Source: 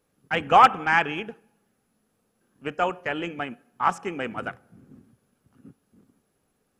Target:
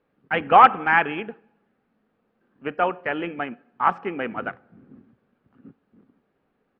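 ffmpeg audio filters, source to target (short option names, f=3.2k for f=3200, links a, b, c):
-af "firequalizer=gain_entry='entry(110,0);entry(220,6);entry(1900,6);entry(4400,-6);entry(6700,-28)':delay=0.05:min_phase=1,volume=-3.5dB"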